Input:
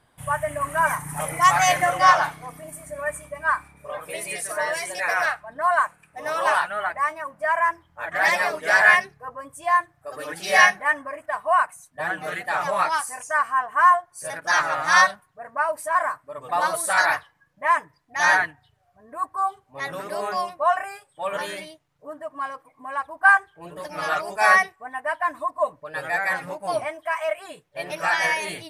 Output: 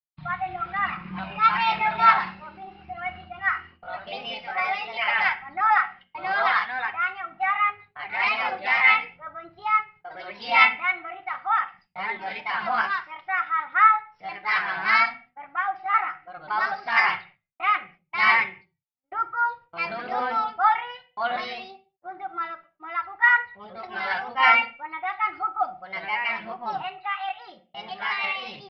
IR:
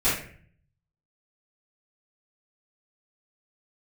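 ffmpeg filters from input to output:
-filter_complex "[0:a]agate=range=-50dB:threshold=-45dB:ratio=16:detection=peak,dynaudnorm=f=150:g=31:m=11.5dB,aphaser=in_gain=1:out_gain=1:delay=3.2:decay=0.28:speed=0.94:type=sinusoidal,asetrate=53981,aresample=44100,atempo=0.816958,asplit=2[a][b];[1:a]atrim=start_sample=2205,afade=t=out:st=0.31:d=0.01,atrim=end_sample=14112,asetrate=52920,aresample=44100[c];[b][c]afir=irnorm=-1:irlink=0,volume=-21.5dB[d];[a][d]amix=inputs=2:normalize=0,aresample=11025,aresample=44100,volume=-6dB"

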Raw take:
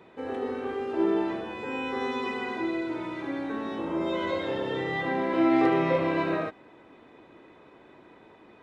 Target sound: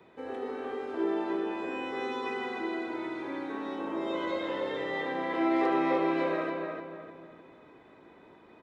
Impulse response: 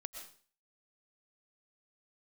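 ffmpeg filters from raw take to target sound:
-filter_complex "[0:a]asplit=2[a][b];[b]adelay=302,lowpass=f=2.8k:p=1,volume=-3dB,asplit=2[c][d];[d]adelay=302,lowpass=f=2.8k:p=1,volume=0.4,asplit=2[e][f];[f]adelay=302,lowpass=f=2.8k:p=1,volume=0.4,asplit=2[g][h];[h]adelay=302,lowpass=f=2.8k:p=1,volume=0.4,asplit=2[i][j];[j]adelay=302,lowpass=f=2.8k:p=1,volume=0.4[k];[a][c][e][g][i][k]amix=inputs=6:normalize=0,acrossover=split=240|460|2200[l][m][n][o];[l]acompressor=threshold=-51dB:ratio=6[p];[o]bandreject=f=2.8k:w=17[q];[p][m][n][q]amix=inputs=4:normalize=0,volume=-4dB"

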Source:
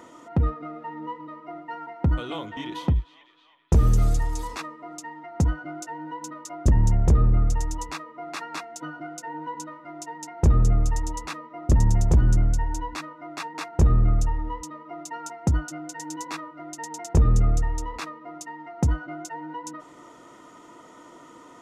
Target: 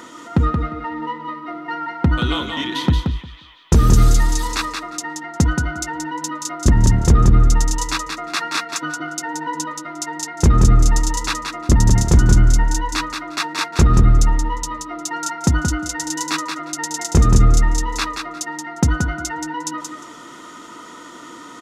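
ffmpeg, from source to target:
-af "firequalizer=gain_entry='entry(120,0);entry(230,5);entry(620,-2);entry(1400,9);entry(2300,6);entry(3800,12);entry(6900,8)':delay=0.05:min_phase=1,aecho=1:1:177|354|531:0.531|0.0849|0.0136,volume=4.5dB"

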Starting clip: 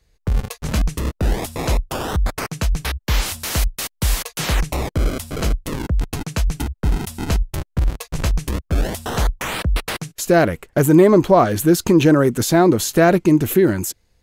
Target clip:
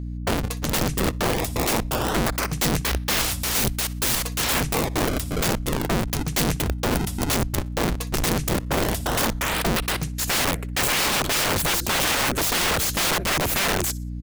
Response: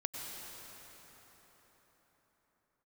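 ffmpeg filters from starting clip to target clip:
-af "aeval=exprs='val(0)+0.0355*(sin(2*PI*60*n/s)+sin(2*PI*2*60*n/s)/2+sin(2*PI*3*60*n/s)/3+sin(2*PI*4*60*n/s)/4+sin(2*PI*5*60*n/s)/5)':c=same,aecho=1:1:61|122|183:0.1|0.032|0.0102,aeval=exprs='(mod(7.08*val(0)+1,2)-1)/7.08':c=same"

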